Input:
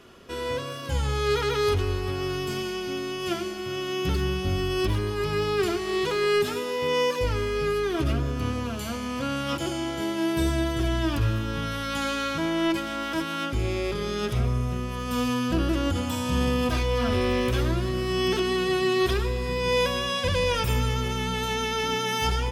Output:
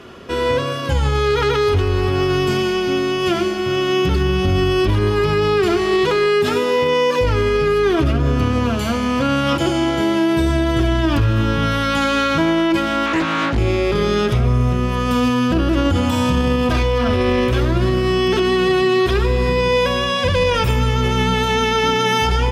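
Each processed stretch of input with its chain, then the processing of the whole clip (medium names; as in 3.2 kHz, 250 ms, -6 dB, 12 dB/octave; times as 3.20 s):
13.06–13.58 s: low-pass 6.7 kHz + overload inside the chain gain 26 dB + loudspeaker Doppler distortion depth 0.67 ms
whole clip: high-pass 43 Hz 12 dB/octave; treble shelf 5.7 kHz -11 dB; loudness maximiser +20 dB; trim -7.5 dB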